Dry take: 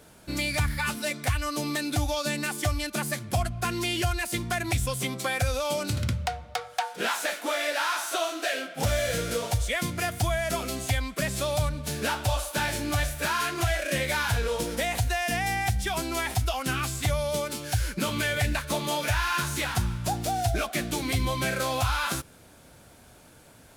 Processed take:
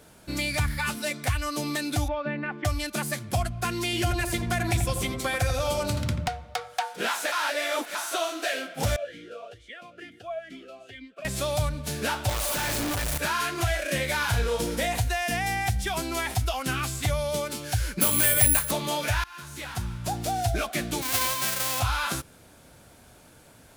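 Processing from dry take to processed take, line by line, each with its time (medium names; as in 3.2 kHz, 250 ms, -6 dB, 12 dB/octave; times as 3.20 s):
2.08–2.65 s: low-pass 2.2 kHz 24 dB/octave
3.84–6.28 s: filtered feedback delay 86 ms, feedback 70%, low-pass 1.5 kHz, level -6 dB
7.32–7.95 s: reverse
8.96–11.25 s: talking filter a-i 2.2 Hz
12.29–13.18 s: one-bit comparator
14.18–15.02 s: doubling 34 ms -7 dB
18.01–18.71 s: careless resampling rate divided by 4×, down none, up zero stuff
19.24–20.29 s: fade in, from -24 dB
21.01–21.79 s: formants flattened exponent 0.1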